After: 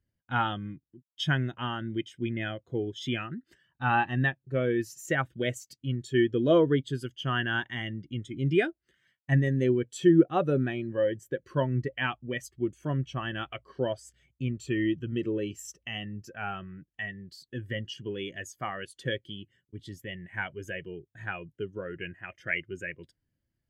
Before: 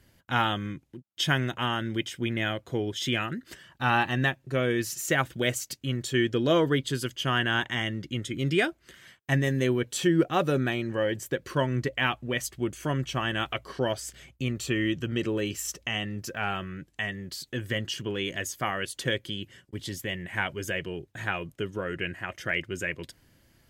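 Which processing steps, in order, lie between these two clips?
0:22.12–0:22.55: dynamic equaliser 2,400 Hz, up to +6 dB, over −44 dBFS, Q 2.3
every bin expanded away from the loudest bin 1.5 to 1

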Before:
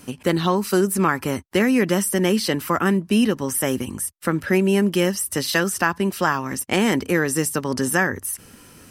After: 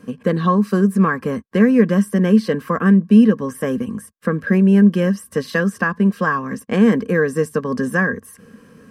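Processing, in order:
high-shelf EQ 6,900 Hz −9 dB
hollow resonant body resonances 210/460/1,100/1,600 Hz, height 18 dB, ringing for 40 ms
level −8.5 dB

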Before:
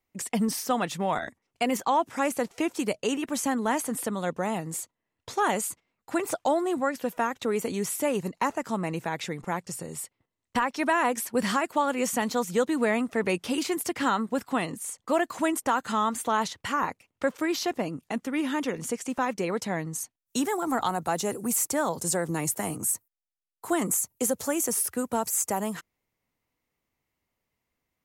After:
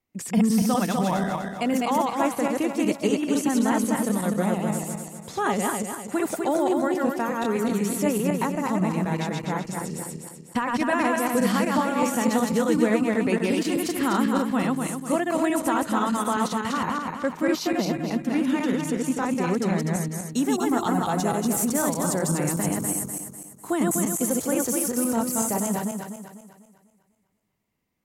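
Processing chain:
feedback delay that plays each chunk backwards 124 ms, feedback 63%, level −1 dB
parametric band 190 Hz +8 dB 1.6 octaves
level −2 dB
MP3 128 kbit/s 44,100 Hz

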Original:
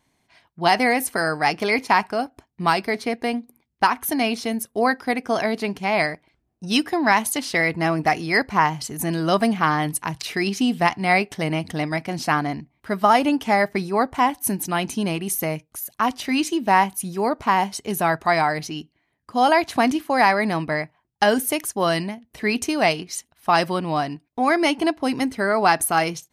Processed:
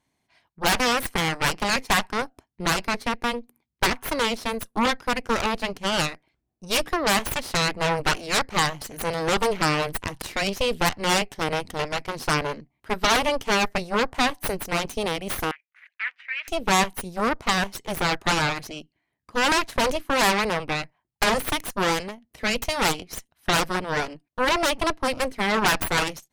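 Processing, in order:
harmonic generator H 7 −10 dB, 8 −6 dB, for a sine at −4 dBFS
0:15.51–0:16.48: flat-topped band-pass 2,000 Hz, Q 2.2
level −8.5 dB

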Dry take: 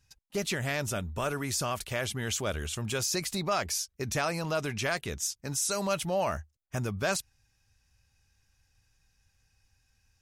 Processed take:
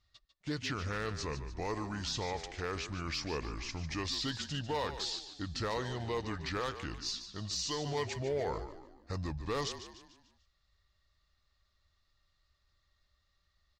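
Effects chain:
low-pass filter 8,800 Hz 24 dB per octave
hard clipping −22.5 dBFS, distortion −22 dB
echo with shifted repeats 109 ms, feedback 45%, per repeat −54 Hz, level −11 dB
wrong playback speed 45 rpm record played at 33 rpm
level −5.5 dB

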